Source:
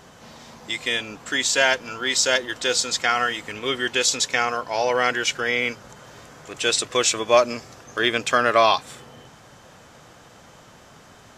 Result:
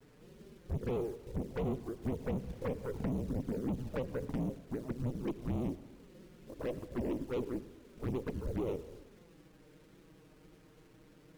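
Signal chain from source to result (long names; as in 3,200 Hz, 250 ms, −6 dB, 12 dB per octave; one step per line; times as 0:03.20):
neighbouring bands swapped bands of 2,000 Hz
Butterworth low-pass 510 Hz 48 dB per octave
dynamic equaliser 210 Hz, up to +5 dB, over −41 dBFS, Q 0.9
downward compressor 12 to 1, threshold −28 dBFS, peak gain reduction 10.5 dB
log-companded quantiser 6 bits
tube saturation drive 40 dB, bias 0.45
flanger swept by the level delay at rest 8.2 ms, full sweep at −40 dBFS
convolution reverb RT60 1.1 s, pre-delay 68 ms, DRR 15 dB
0:02.02–0:04.31: multiband upward and downward compressor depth 70%
level +9 dB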